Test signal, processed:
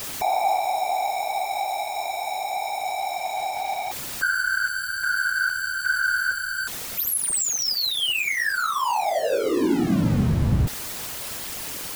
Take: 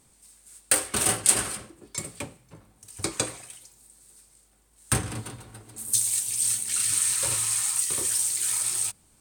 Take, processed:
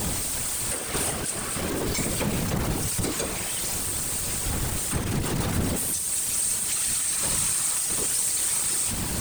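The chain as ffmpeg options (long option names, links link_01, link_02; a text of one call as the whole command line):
ffmpeg -i in.wav -af "aeval=exprs='val(0)+0.5*0.119*sgn(val(0))':channel_layout=same,lowshelf=frequency=450:gain=5,alimiter=limit=-12.5dB:level=0:latency=1:release=444,afftfilt=real='hypot(re,im)*cos(2*PI*random(0))':imag='hypot(re,im)*sin(2*PI*random(1))':win_size=512:overlap=0.75,acrusher=bits=9:mode=log:mix=0:aa=0.000001,volume=1.5dB" out.wav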